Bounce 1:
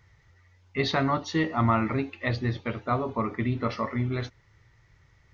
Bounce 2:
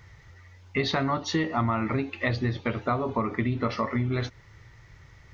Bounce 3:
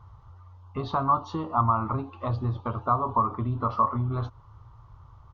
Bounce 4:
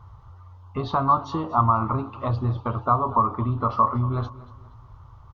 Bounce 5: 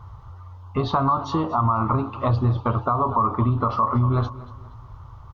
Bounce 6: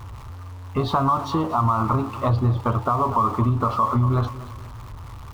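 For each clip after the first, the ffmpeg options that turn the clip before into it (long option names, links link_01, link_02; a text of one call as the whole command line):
ffmpeg -i in.wav -af "acompressor=threshold=-33dB:ratio=4,volume=8.5dB" out.wav
ffmpeg -i in.wav -af "firequalizer=gain_entry='entry(110,0);entry(160,-7);entry(440,-9);entry(1100,8);entry(1900,-29);entry(3000,-14);entry(5500,-20)':delay=0.05:min_phase=1,volume=2.5dB" out.wav
ffmpeg -i in.wav -af "aecho=1:1:237|474|711:0.126|0.0453|0.0163,volume=3.5dB" out.wav
ffmpeg -i in.wav -af "alimiter=limit=-16.5dB:level=0:latency=1:release=77,volume=5dB" out.wav
ffmpeg -i in.wav -af "aeval=exprs='val(0)+0.5*0.0119*sgn(val(0))':channel_layout=same" out.wav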